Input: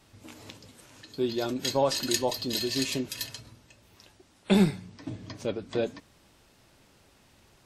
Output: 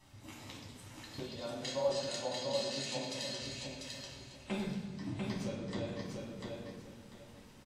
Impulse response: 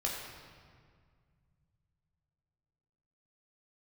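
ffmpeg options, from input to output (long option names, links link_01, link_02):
-filter_complex "[0:a]acompressor=threshold=-34dB:ratio=6,asettb=1/sr,asplit=3[link_01][link_02][link_03];[link_01]atrim=end=1.194[link_04];[link_02]atrim=start=1.19:end=3.42,asetpts=PTS-STARTPTS,afade=type=in:duration=0.004:curve=qsin,afade=type=out:start_time=2.226:duration=0.004:curve=qsin,highpass=170,equalizer=frequency=250:width_type=q:width=4:gain=-4,equalizer=frequency=360:width_type=q:width=4:gain=-9,equalizer=frequency=570:width_type=q:width=4:gain=10,lowpass=frequency=8700:width=0.5412,lowpass=frequency=8700:width=1.3066[link_05];[link_03]atrim=start=3.416[link_06];[link_04][link_05]acrossfade=duration=0.004:curve1=hsin:curve2=qsin[link_07];[link_07][link_06]acrossfade=duration=0.004:curve1=qsin:curve2=hsin,aecho=1:1:694|1388|2082|2776:0.668|0.167|0.0418|0.0104[link_08];[1:a]atrim=start_sample=2205,asetrate=70560,aresample=44100[link_09];[link_08][link_09]afir=irnorm=-1:irlink=0,volume=-1.5dB"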